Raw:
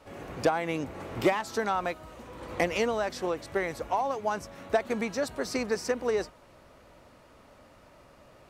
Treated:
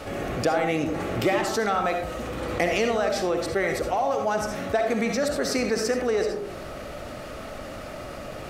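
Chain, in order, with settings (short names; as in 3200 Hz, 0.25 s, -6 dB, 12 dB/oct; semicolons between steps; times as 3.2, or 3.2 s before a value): notch 970 Hz, Q 5.2; digital reverb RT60 0.51 s, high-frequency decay 0.35×, pre-delay 25 ms, DRR 5.5 dB; fast leveller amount 50%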